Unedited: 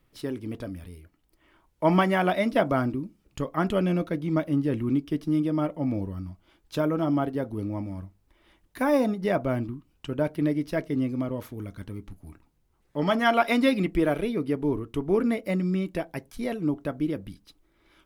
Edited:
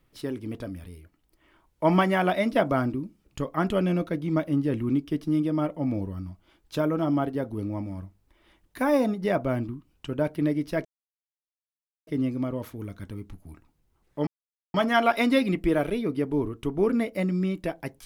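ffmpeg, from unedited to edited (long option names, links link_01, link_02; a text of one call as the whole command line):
ffmpeg -i in.wav -filter_complex "[0:a]asplit=3[link_01][link_02][link_03];[link_01]atrim=end=10.85,asetpts=PTS-STARTPTS,afade=type=out:start_time=10.846:duration=0.004:curve=hsin,apad=pad_dur=1.22[link_04];[link_02]atrim=start=10.85:end=13.05,asetpts=PTS-STARTPTS,afade=type=in:duration=0.004:curve=hsin,afade=type=out:start_time=2.196:duration=0.004:curve=hsin,apad=pad_dur=0.47[link_05];[link_03]atrim=start=13.05,asetpts=PTS-STARTPTS,afade=type=in:duration=0.004:curve=hsin[link_06];[link_04][link_05][link_06]concat=n=3:v=0:a=1" out.wav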